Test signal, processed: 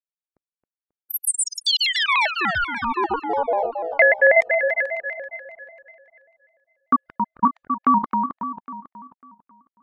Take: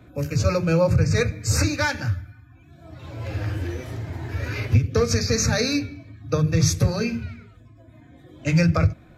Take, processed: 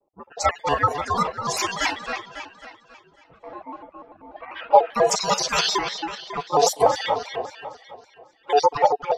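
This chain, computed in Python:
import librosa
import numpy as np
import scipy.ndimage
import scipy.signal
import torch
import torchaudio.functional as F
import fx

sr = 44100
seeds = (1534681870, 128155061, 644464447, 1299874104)

p1 = fx.spec_dropout(x, sr, seeds[0], share_pct=46)
p2 = fx.noise_reduce_blind(p1, sr, reduce_db=17)
p3 = p2 * np.sin(2.0 * np.pi * 640.0 * np.arange(len(p2)) / sr)
p4 = fx.low_shelf(p3, sr, hz=280.0, db=-12.0)
p5 = p4 * (1.0 - 0.42 / 2.0 + 0.42 / 2.0 * np.cos(2.0 * np.pi * 2.3 * (np.arange(len(p4)) / sr)))
p6 = fx.env_lowpass(p5, sr, base_hz=320.0, full_db=-32.5)
p7 = p6 + fx.echo_wet_lowpass(p6, sr, ms=272, feedback_pct=48, hz=3800.0, wet_db=-6, dry=0)
p8 = fx.vibrato_shape(p7, sr, shape='square', rate_hz=5.1, depth_cents=160.0)
y = F.gain(torch.from_numpy(p8), 9.0).numpy()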